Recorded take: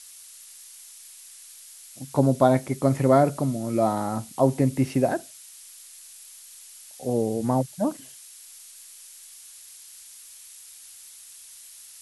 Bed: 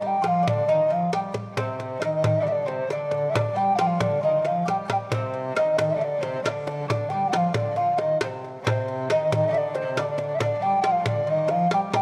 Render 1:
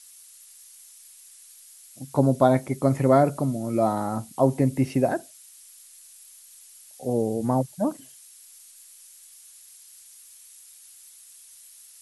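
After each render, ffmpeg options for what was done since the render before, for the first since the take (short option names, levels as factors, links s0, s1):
-af "afftdn=nr=6:nf=-47"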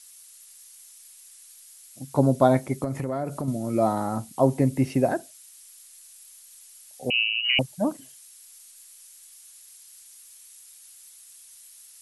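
-filter_complex "[0:a]asettb=1/sr,asplit=3[s0][s1][s2];[s0]atrim=end=2.844[s3];[s1]atrim=start=2.84:end=3.48,asetpts=PTS-STARTPTS,afade=t=in:d=0.004:c=qsin,afade=t=out:st=0.636:d=0.004:c=qsin,acompressor=threshold=0.0562:ratio=6:attack=3.2:release=140:knee=1:detection=peak[s4];[s2]atrim=start=3.476[s5];[s3][s4]acrossfade=d=0.004:c1=hsin:c2=qsin[s6];[s6][s5]acrossfade=d=0.004:c1=qsin:c2=hsin,asettb=1/sr,asplit=3[s7][s8][s9];[s7]atrim=end=7.104[s10];[s8]atrim=start=7.1:end=7.59,asetpts=PTS-STARTPTS,afade=t=in:d=0.004:c=qsin,afade=t=out:st=0.486:d=0.004:c=qsin,lowpass=f=2600:t=q:w=0.5098,lowpass=f=2600:t=q:w=0.6013,lowpass=f=2600:t=q:w=0.9,lowpass=f=2600:t=q:w=2.563,afreqshift=-3100[s11];[s9]atrim=start=7.586[s12];[s10][s11]acrossfade=d=0.004:c1=hsin:c2=qsin[s13];[s13][s12]acrossfade=d=0.004:c1=qsin:c2=hsin"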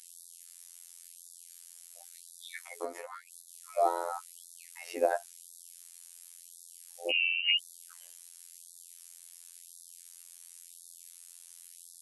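-af "afftfilt=real='hypot(re,im)*cos(PI*b)':imag='0':win_size=2048:overlap=0.75,afftfilt=real='re*gte(b*sr/1024,290*pow(3500/290,0.5+0.5*sin(2*PI*0.94*pts/sr)))':imag='im*gte(b*sr/1024,290*pow(3500/290,0.5+0.5*sin(2*PI*0.94*pts/sr)))':win_size=1024:overlap=0.75"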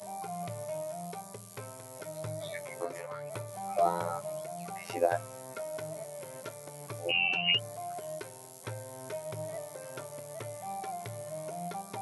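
-filter_complex "[1:a]volume=0.133[s0];[0:a][s0]amix=inputs=2:normalize=0"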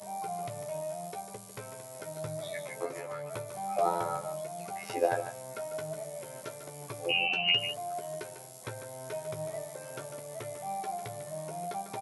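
-filter_complex "[0:a]asplit=2[s0][s1];[s1]adelay=14,volume=0.422[s2];[s0][s2]amix=inputs=2:normalize=0,asplit=2[s3][s4];[s4]aecho=0:1:148:0.316[s5];[s3][s5]amix=inputs=2:normalize=0"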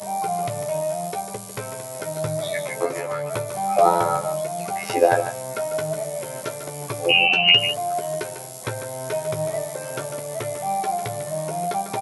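-af "volume=3.98,alimiter=limit=0.891:level=0:latency=1"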